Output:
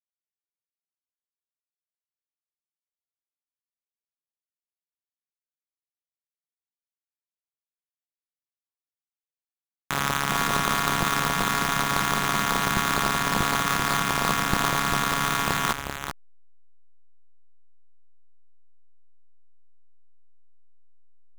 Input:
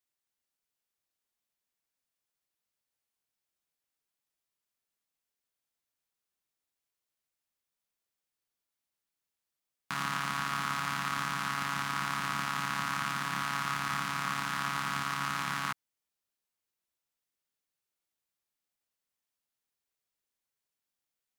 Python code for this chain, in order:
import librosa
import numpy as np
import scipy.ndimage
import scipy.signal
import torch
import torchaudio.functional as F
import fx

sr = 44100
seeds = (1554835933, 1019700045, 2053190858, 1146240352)

y = fx.halfwave_hold(x, sr)
y = y + 10.0 ** (-5.5 / 20.0) * np.pad(y, (int(390 * sr / 1000.0), 0))[:len(y)]
y = fx.backlash(y, sr, play_db=-29.5)
y = y * 10.0 ** (6.5 / 20.0)